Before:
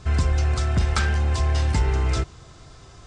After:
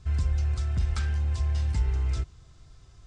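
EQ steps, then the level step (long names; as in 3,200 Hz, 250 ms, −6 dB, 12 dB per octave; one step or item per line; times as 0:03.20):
first-order pre-emphasis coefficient 0.9
RIAA equalisation playback
0.0 dB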